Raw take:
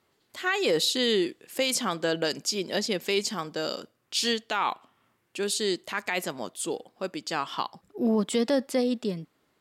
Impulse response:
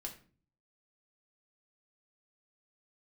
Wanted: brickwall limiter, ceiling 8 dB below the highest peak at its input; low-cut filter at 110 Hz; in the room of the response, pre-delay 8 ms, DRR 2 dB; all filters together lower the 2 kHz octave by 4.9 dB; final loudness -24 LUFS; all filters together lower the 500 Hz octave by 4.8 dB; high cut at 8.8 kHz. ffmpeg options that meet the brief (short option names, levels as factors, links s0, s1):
-filter_complex "[0:a]highpass=110,lowpass=8800,equalizer=f=500:t=o:g=-5.5,equalizer=f=2000:t=o:g=-6,alimiter=limit=0.0631:level=0:latency=1,asplit=2[s0][s1];[1:a]atrim=start_sample=2205,adelay=8[s2];[s1][s2]afir=irnorm=-1:irlink=0,volume=1.12[s3];[s0][s3]amix=inputs=2:normalize=0,volume=2.51"